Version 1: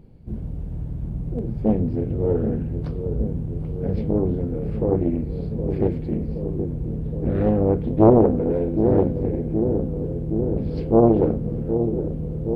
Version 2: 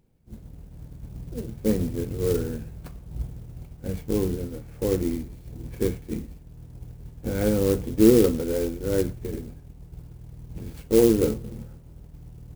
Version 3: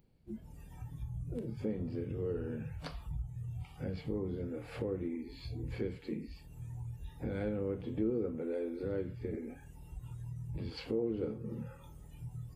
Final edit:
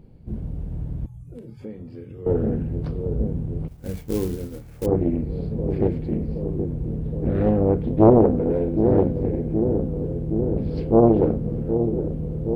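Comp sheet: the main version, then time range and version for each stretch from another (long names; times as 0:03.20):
1
0:01.06–0:02.26: punch in from 3
0:03.68–0:04.86: punch in from 2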